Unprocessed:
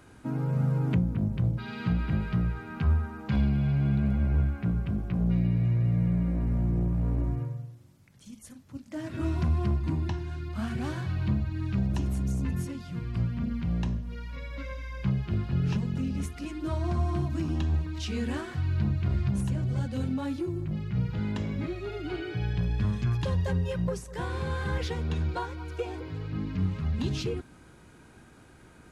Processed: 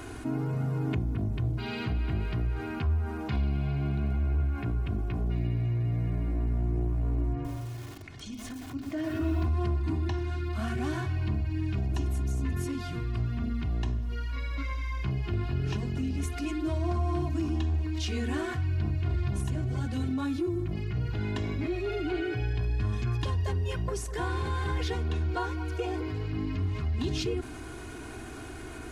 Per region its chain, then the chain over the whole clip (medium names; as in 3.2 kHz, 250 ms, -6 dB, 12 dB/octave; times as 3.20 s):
7.33–9.46 s: low-pass 4.8 kHz + hum notches 60/120/180/240/300/360/420/480 Hz + bit-crushed delay 117 ms, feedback 35%, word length 9-bit, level -4 dB
whole clip: comb 2.8 ms, depth 73%; level flattener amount 50%; trim -6.5 dB